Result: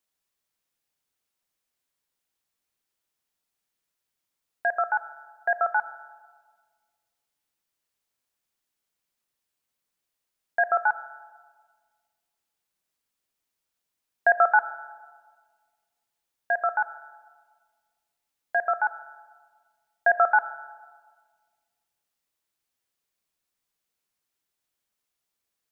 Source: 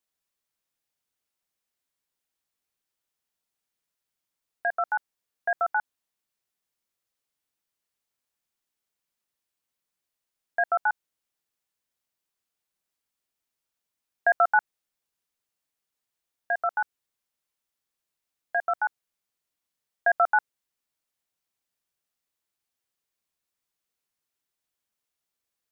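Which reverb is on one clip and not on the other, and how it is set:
comb and all-pass reverb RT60 1.6 s, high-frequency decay 0.45×, pre-delay 0 ms, DRR 13.5 dB
level +2 dB

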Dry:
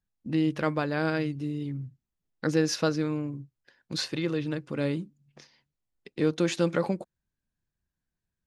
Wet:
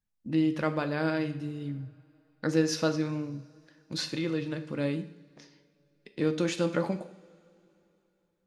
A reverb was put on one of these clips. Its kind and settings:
coupled-rooms reverb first 0.6 s, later 3.2 s, from −21 dB, DRR 7.5 dB
level −2.5 dB

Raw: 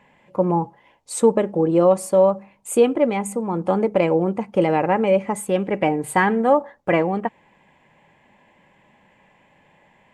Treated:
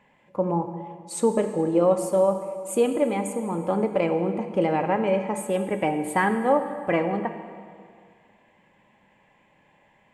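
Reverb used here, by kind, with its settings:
dense smooth reverb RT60 2.1 s, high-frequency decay 0.85×, DRR 7 dB
level −5 dB

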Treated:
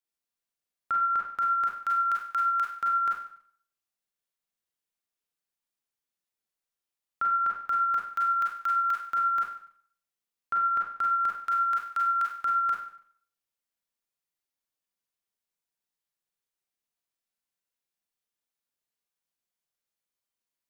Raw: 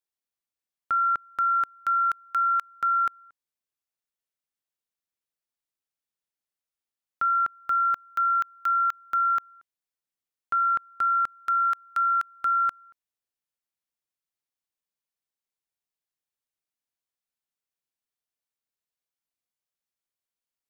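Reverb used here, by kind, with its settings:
four-comb reverb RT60 0.55 s, combs from 32 ms, DRR −2 dB
level −3 dB

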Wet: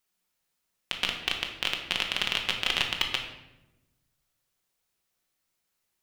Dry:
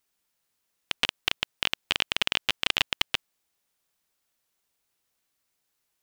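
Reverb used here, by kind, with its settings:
rectangular room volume 390 cubic metres, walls mixed, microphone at 0.99 metres
level −3 dB

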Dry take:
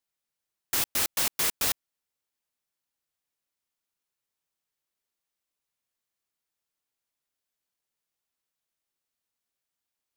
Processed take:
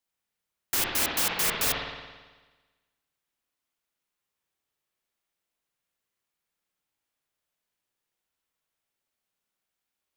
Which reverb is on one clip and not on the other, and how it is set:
spring reverb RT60 1.3 s, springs 55 ms, chirp 60 ms, DRR −2 dB

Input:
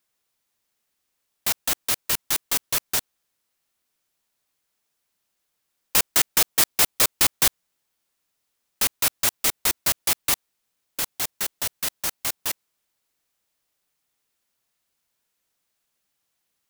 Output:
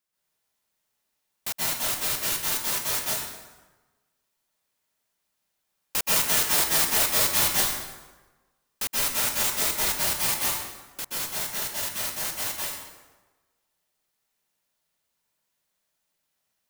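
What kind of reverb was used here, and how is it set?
dense smooth reverb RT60 1.2 s, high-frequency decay 0.7×, pre-delay 115 ms, DRR −7 dB
level −8 dB

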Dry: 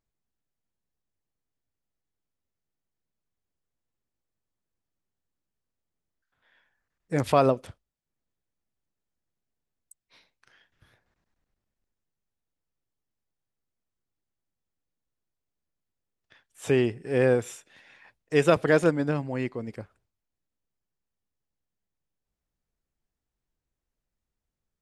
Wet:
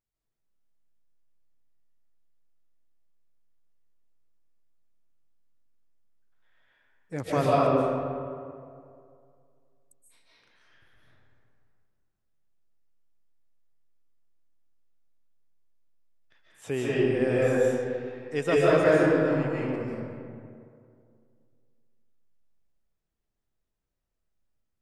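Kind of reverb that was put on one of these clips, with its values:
comb and all-pass reverb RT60 2.3 s, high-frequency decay 0.5×, pre-delay 105 ms, DRR −8 dB
level −8 dB

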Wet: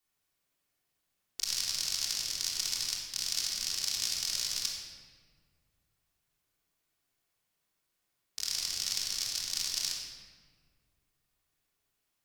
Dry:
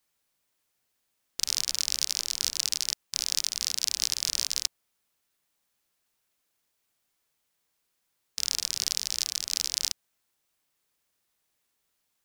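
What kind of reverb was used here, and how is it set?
rectangular room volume 2,200 cubic metres, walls mixed, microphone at 3.4 metres
level −8 dB

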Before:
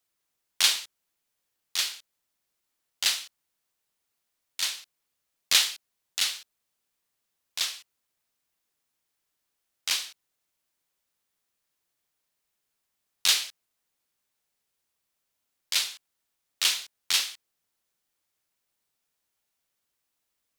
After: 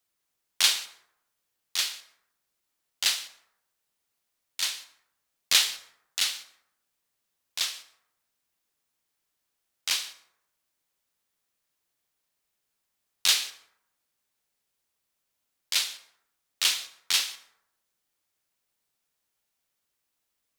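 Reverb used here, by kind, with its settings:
dense smooth reverb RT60 0.81 s, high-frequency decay 0.45×, pre-delay 105 ms, DRR 17.5 dB

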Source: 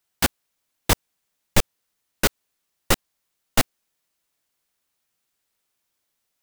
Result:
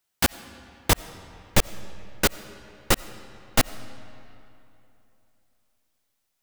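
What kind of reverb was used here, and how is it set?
comb and all-pass reverb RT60 3 s, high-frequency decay 0.7×, pre-delay 45 ms, DRR 16 dB
level −1 dB

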